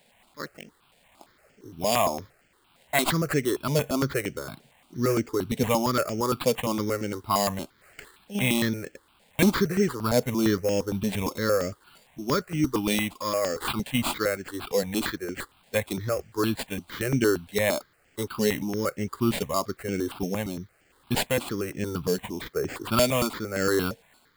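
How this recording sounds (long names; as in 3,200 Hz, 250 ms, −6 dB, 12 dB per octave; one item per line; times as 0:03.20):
a quantiser's noise floor 10 bits, dither triangular
tremolo triangle 1.1 Hz, depth 45%
aliases and images of a low sample rate 5,900 Hz, jitter 0%
notches that jump at a steady rate 8.7 Hz 330–3,800 Hz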